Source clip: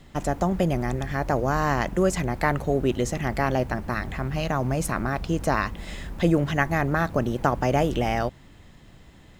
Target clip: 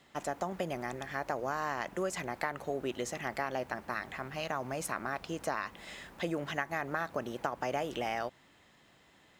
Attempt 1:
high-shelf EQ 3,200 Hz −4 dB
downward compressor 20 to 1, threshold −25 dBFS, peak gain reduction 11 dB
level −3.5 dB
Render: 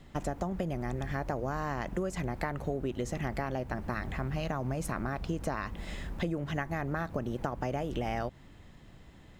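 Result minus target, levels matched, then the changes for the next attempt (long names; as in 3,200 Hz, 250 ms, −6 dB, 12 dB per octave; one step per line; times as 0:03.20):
1,000 Hz band −3.0 dB
add first: high-pass filter 770 Hz 6 dB per octave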